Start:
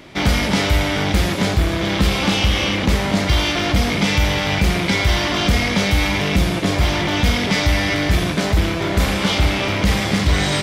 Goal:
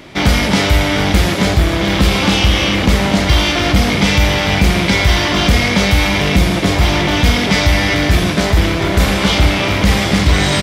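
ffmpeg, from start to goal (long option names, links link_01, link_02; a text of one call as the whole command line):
ffmpeg -i in.wav -af "aecho=1:1:732|1464|2196|2928|3660:0.224|0.103|0.0474|0.0218|0.01,volume=4.5dB" out.wav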